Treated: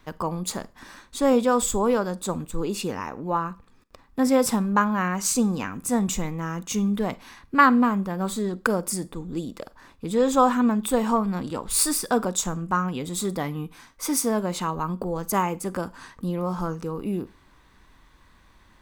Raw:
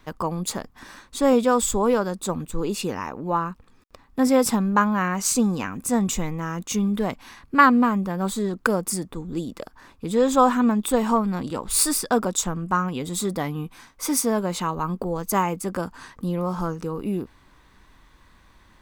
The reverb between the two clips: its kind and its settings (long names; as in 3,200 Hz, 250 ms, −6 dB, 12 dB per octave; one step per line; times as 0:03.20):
four-comb reverb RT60 0.31 s, combs from 33 ms, DRR 18.5 dB
level −1.5 dB